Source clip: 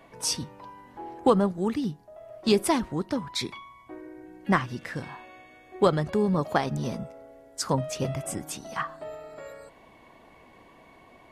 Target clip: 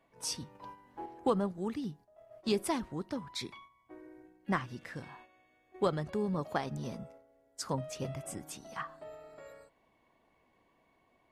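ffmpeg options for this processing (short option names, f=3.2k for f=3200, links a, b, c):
-filter_complex "[0:a]agate=range=-8dB:threshold=-45dB:ratio=16:detection=peak,asettb=1/sr,asplit=3[a][b][c];[a]atrim=end=0.554[d];[b]atrim=start=0.55:end=1.06,asetpts=PTS-STARTPTS,afade=t=in:d=0.004:c=qsin,afade=t=out:st=0.506:d=0.004:c=qsin,acontrast=59[e];[c]atrim=start=1.056[f];[d][e]acrossfade=d=0.004:c1=hsin:c2=qsin[g];[g][f]acrossfade=d=0.004:c1=qsin:c2=hsin,volume=-9dB"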